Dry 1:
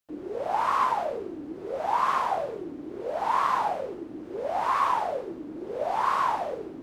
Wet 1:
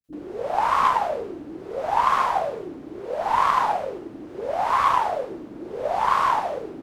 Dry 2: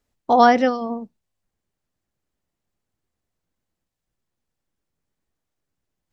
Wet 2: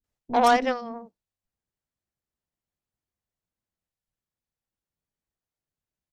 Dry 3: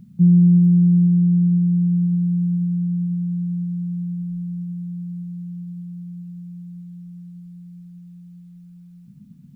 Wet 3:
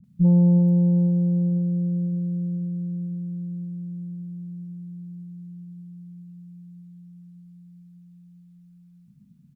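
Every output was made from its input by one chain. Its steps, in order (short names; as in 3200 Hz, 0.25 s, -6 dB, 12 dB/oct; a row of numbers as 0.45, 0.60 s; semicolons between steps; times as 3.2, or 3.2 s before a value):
added harmonics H 5 -17 dB, 6 -27 dB, 7 -17 dB, 8 -44 dB, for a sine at -1 dBFS; bands offset in time lows, highs 40 ms, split 310 Hz; match loudness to -23 LUFS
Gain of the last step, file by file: +7.0, -6.0, -5.0 dB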